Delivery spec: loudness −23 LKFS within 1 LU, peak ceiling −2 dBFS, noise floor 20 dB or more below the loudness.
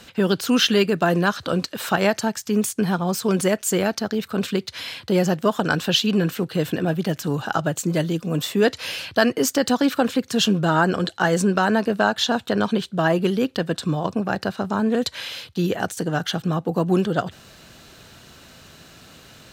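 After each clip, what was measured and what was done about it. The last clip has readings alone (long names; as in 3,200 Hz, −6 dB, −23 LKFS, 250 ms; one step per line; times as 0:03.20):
integrated loudness −22.0 LKFS; sample peak −2.5 dBFS; target loudness −23.0 LKFS
→ level −1 dB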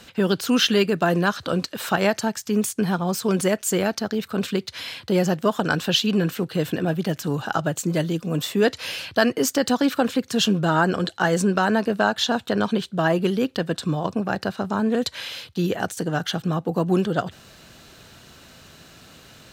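integrated loudness −23.0 LKFS; sample peak −3.5 dBFS; background noise floor −50 dBFS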